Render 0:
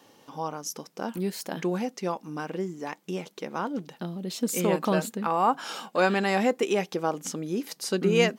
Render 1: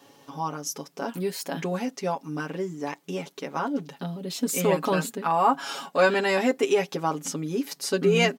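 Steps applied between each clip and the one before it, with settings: comb 7.2 ms, depth 86%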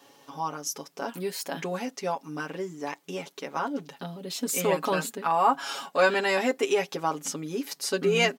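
bass shelf 280 Hz -8.5 dB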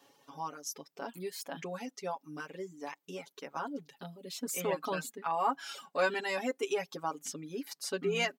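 reverb removal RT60 0.93 s; trim -7.5 dB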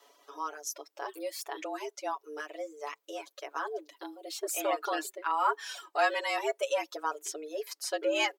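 frequency shift +150 Hz; trim +2.5 dB

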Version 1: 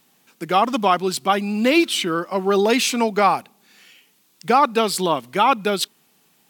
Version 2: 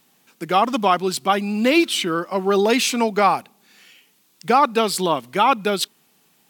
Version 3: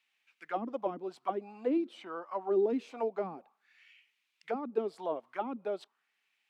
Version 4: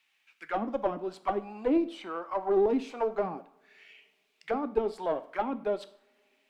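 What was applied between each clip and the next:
no audible change
bass shelf 100 Hz -9 dB; auto-wah 230–2400 Hz, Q 2.9, down, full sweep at -12 dBFS; trim -7 dB
single-diode clipper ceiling -24 dBFS; two-slope reverb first 0.51 s, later 3 s, from -28 dB, DRR 10.5 dB; trim +5.5 dB

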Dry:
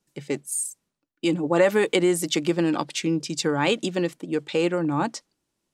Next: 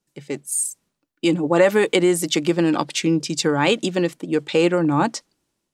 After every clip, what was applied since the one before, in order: level rider gain up to 8.5 dB; trim -2 dB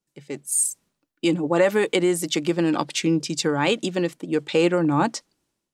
level rider gain up to 11.5 dB; trim -6.5 dB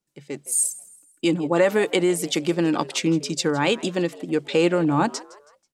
frequency-shifting echo 162 ms, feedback 40%, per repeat +99 Hz, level -20 dB

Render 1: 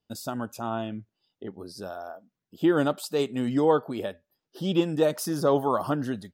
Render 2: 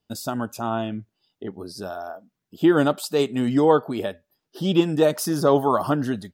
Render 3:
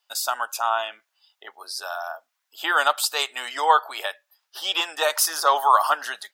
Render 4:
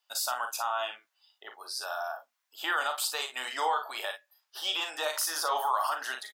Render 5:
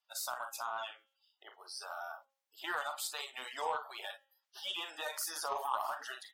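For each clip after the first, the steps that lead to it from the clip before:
band-stop 520 Hz, Q 13; trim +5 dB
high-pass 860 Hz 24 dB/octave; trim +8.5 dB
peak limiter -15.5 dBFS, peak gain reduction 11 dB; on a send: early reflections 39 ms -7 dB, 55 ms -11 dB; on the sum: trim -5 dB
coarse spectral quantiser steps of 30 dB; de-hum 271.1 Hz, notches 14; Chebyshev shaper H 3 -18 dB, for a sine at -16 dBFS; trim -4 dB

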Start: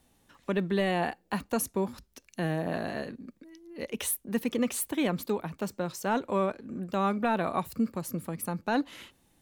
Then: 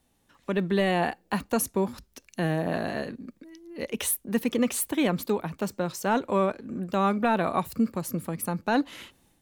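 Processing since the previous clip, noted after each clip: level rider gain up to 7 dB; trim -3.5 dB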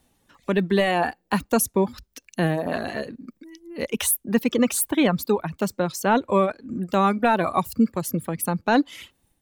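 reverb removal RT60 1.1 s; trim +5.5 dB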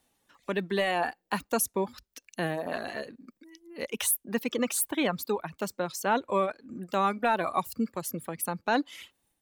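bass shelf 270 Hz -10.5 dB; trim -4.5 dB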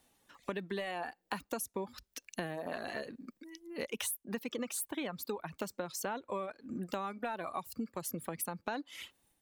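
compression 10:1, threshold -36 dBFS, peak gain reduction 16 dB; trim +1.5 dB

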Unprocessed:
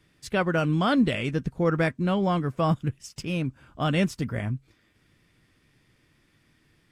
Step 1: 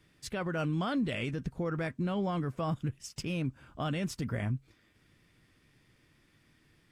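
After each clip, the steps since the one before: peak limiter -22.5 dBFS, peak gain reduction 11 dB; trim -2 dB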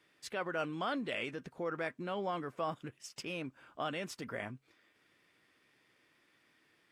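high-pass 140 Hz 6 dB/octave; tone controls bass -15 dB, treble -5 dB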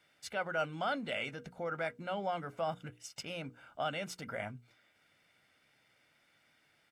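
hum notches 60/120/180/240/300/360/420/480 Hz; comb 1.4 ms, depth 55%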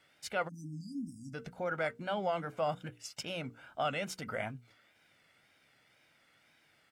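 spectral selection erased 0.48–1.34 s, 320–4700 Hz; wow and flutter 87 cents; trim +2.5 dB

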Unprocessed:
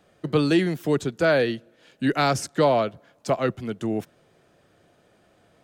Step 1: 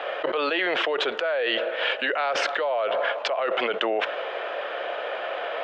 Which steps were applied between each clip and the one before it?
elliptic band-pass 520–3100 Hz, stop band 70 dB; level flattener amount 100%; trim -7 dB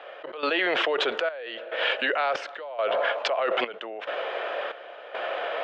trance gate "..xxxx..xxx" 70 bpm -12 dB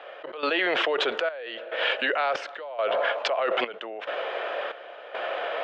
no audible change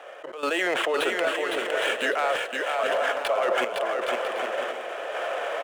median filter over 9 samples; on a send: bouncing-ball echo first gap 510 ms, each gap 0.6×, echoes 5

